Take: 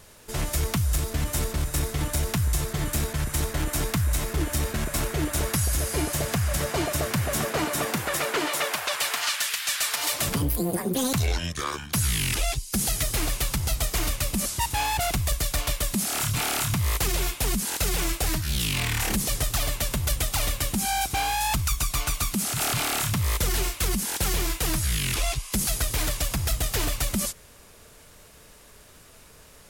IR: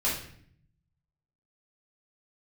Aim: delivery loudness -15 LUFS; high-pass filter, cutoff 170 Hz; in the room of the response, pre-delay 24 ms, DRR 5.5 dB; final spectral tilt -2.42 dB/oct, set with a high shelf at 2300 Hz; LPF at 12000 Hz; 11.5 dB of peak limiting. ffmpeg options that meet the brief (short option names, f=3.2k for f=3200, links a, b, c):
-filter_complex "[0:a]highpass=170,lowpass=12k,highshelf=f=2.3k:g=5.5,alimiter=limit=-22dB:level=0:latency=1,asplit=2[a][b];[1:a]atrim=start_sample=2205,adelay=24[c];[b][c]afir=irnorm=-1:irlink=0,volume=-14.5dB[d];[a][d]amix=inputs=2:normalize=0,volume=14dB"